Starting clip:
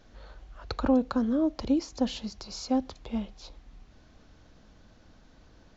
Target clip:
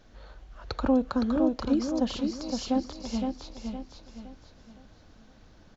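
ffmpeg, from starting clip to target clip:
-af "aecho=1:1:514|1028|1542|2056|2570:0.562|0.214|0.0812|0.0309|0.0117"

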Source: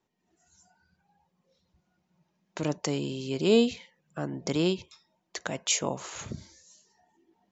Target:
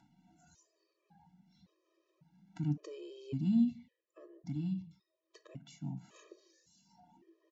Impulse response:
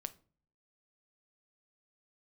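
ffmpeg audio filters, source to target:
-filter_complex "[0:a]asplit=2[s0][s1];[s1]adelay=145.8,volume=0.0562,highshelf=f=4000:g=-3.28[s2];[s0][s2]amix=inputs=2:normalize=0,acrossover=split=300[s3][s4];[s4]acompressor=threshold=0.00282:ratio=2[s5];[s3][s5]amix=inputs=2:normalize=0,equalizer=f=160:w=0.66:g=9.5,acompressor=mode=upward:threshold=0.00631:ratio=2.5[s6];[1:a]atrim=start_sample=2205,afade=t=out:st=0.32:d=0.01,atrim=end_sample=14553[s7];[s6][s7]afir=irnorm=-1:irlink=0,asplit=3[s8][s9][s10];[s8]afade=t=out:st=3.7:d=0.02[s11];[s9]flanger=delay=0.9:depth=6.9:regen=81:speed=1.1:shape=triangular,afade=t=in:st=3.7:d=0.02,afade=t=out:st=6.13:d=0.02[s12];[s10]afade=t=in:st=6.13:d=0.02[s13];[s11][s12][s13]amix=inputs=3:normalize=0,lowpass=5800,lowshelf=f=91:g=-7.5,afftfilt=real='re*gt(sin(2*PI*0.9*pts/sr)*(1-2*mod(floor(b*sr/1024/330),2)),0)':imag='im*gt(sin(2*PI*0.9*pts/sr)*(1-2*mod(floor(b*sr/1024/330),2)),0)':win_size=1024:overlap=0.75,volume=0.631"

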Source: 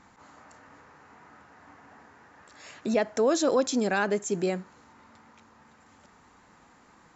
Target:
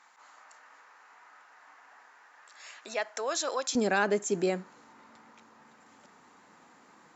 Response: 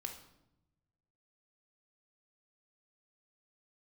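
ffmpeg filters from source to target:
-af "asetnsamples=n=441:p=0,asendcmd='3.75 highpass f 190',highpass=900"

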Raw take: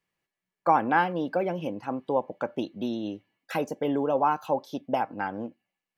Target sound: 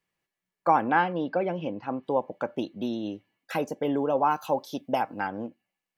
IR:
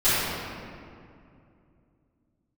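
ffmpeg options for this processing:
-filter_complex "[0:a]asettb=1/sr,asplit=3[s0][s1][s2];[s0]atrim=end=0.884[s3];[s1]atrim=start=0.88:end=2.03,asetpts=PTS-STARTPTS,afade=t=in:d=0.004:c=qsin,afade=t=out:st=1.146:d=0.004:c=qsin,lowpass=f=4700:w=0.5412,lowpass=f=4700:w=1.3066[s4];[s2]atrim=start=2.026[s5];[s3][s4]acrossfade=d=0.004:c1=hsin:c2=qsin[s6];[s6][s5]acrossfade=d=0.004:c1=qsin:c2=hsin,asettb=1/sr,asplit=3[s7][s8][s9];[s7]atrim=end=4.304[s10];[s8]atrim=start=4.3:end=5.27,asetpts=PTS-STARTPTS,afade=t=in:d=0.004:c=qsin,afade=t=out:st=0.966:d=0.004:c=qsin,highshelf=f=3700:g=8[s11];[s9]atrim=start=5.266[s12];[s10][s11]acrossfade=d=0.004:c1=hsin:c2=qsin[s13];[s13][s12]acrossfade=d=0.004:c1=qsin:c2=hsin"

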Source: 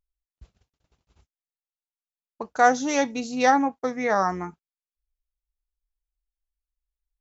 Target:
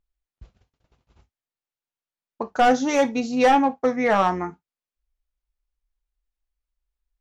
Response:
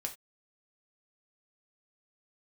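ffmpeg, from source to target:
-filter_complex "[0:a]asoftclip=type=hard:threshold=0.141,highshelf=f=5600:g=-12,asplit=2[s0][s1];[1:a]atrim=start_sample=2205,atrim=end_sample=3087[s2];[s1][s2]afir=irnorm=-1:irlink=0,volume=0.891[s3];[s0][s3]amix=inputs=2:normalize=0"

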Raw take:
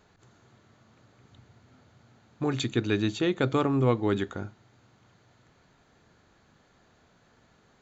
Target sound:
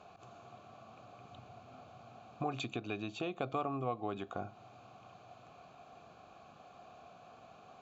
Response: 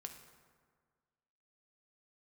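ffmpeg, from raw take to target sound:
-filter_complex "[0:a]acompressor=threshold=0.0126:ratio=8,asplit=3[s0][s1][s2];[s0]bandpass=f=730:t=q:w=8,volume=1[s3];[s1]bandpass=f=1090:t=q:w=8,volume=0.501[s4];[s2]bandpass=f=2440:t=q:w=8,volume=0.355[s5];[s3][s4][s5]amix=inputs=3:normalize=0,bass=f=250:g=13,treble=f=4000:g=9,volume=7.08"

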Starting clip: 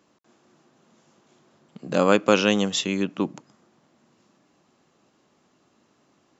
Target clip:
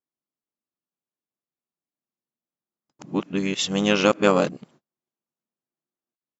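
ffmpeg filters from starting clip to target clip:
-filter_complex "[0:a]areverse,agate=range=0.0158:threshold=0.00224:ratio=16:detection=peak,asplit=2[s0][s1];[s1]asetrate=35002,aresample=44100,atempo=1.25992,volume=0.224[s2];[s0][s2]amix=inputs=2:normalize=0"

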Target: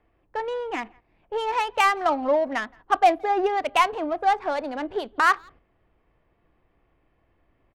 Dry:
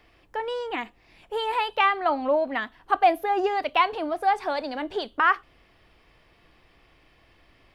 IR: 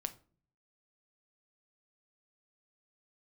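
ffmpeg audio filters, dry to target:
-filter_complex "[0:a]adynamicsmooth=sensitivity=2.5:basefreq=1500,asplit=2[s0][s1];[s1]adelay=170,highpass=300,lowpass=3400,asoftclip=type=hard:threshold=0.119,volume=0.0398[s2];[s0][s2]amix=inputs=2:normalize=0,agate=range=0.447:threshold=0.00316:ratio=16:detection=peak,volume=1.19"

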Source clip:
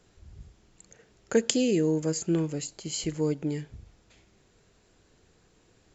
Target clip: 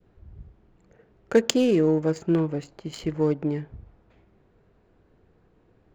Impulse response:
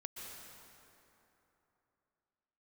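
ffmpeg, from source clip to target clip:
-af "adynamicequalizer=threshold=0.00891:dfrequency=970:dqfactor=0.78:tfrequency=970:tqfactor=0.78:attack=5:release=100:ratio=0.375:range=3:mode=boostabove:tftype=bell,adynamicsmooth=sensitivity=3:basefreq=1600,volume=1.41"

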